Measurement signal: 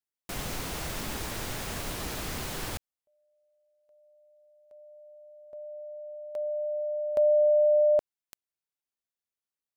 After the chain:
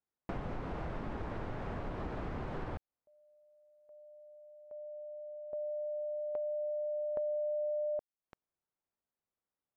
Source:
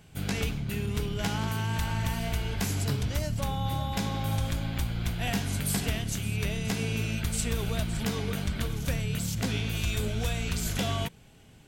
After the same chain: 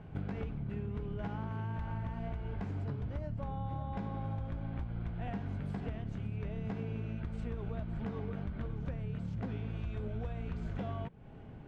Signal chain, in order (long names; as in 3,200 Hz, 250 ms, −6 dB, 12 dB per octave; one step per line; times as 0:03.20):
low-pass filter 1,200 Hz 12 dB per octave
downward compressor 6 to 1, threshold −42 dBFS
level +6 dB